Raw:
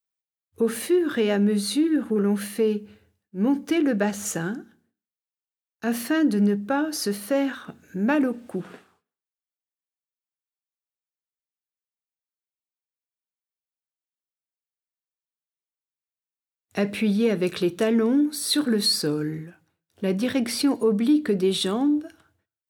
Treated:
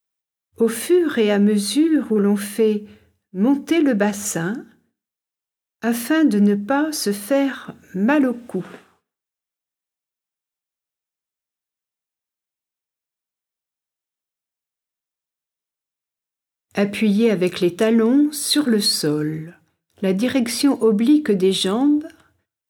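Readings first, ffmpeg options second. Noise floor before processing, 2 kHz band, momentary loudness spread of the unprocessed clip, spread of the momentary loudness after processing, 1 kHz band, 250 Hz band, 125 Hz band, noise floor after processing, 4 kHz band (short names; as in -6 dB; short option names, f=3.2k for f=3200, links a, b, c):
under -85 dBFS, +5.0 dB, 11 LU, 10 LU, +5.0 dB, +5.0 dB, +5.0 dB, under -85 dBFS, +4.0 dB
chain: -af "bandreject=f=4.5k:w=15,volume=5dB"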